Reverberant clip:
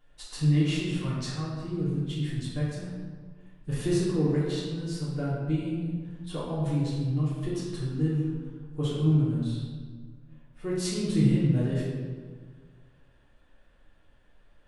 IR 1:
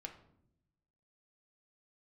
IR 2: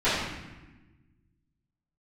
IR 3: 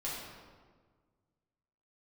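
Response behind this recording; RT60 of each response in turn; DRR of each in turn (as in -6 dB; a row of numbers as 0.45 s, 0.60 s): 3; 0.75 s, 1.1 s, 1.6 s; 2.5 dB, -15.0 dB, -8.0 dB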